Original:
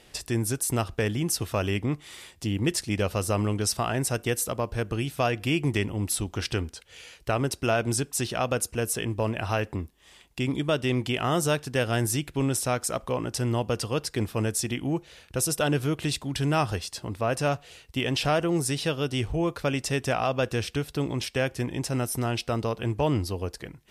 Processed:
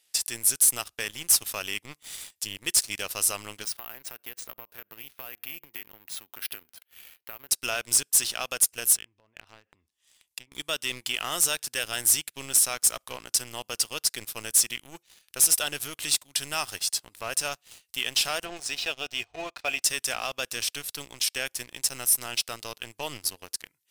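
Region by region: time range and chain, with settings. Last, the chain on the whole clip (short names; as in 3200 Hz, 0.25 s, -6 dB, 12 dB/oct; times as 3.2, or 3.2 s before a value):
3.64–7.49 BPF 150–2500 Hz + compressor 10:1, threshold -32 dBFS + careless resampling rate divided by 3×, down none, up hold
8.94–10.52 treble ducked by the level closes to 1600 Hz, closed at -22.5 dBFS + bell 70 Hz +6 dB 2.8 oct + compressor, threshold -33 dBFS
18.45–19.82 Gaussian blur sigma 1.6 samples + bell 160 Hz -8 dB 1.1 oct + small resonant body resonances 700/2500 Hz, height 14 dB
whole clip: differentiator; sample leveller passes 3; low shelf 120 Hz +8 dB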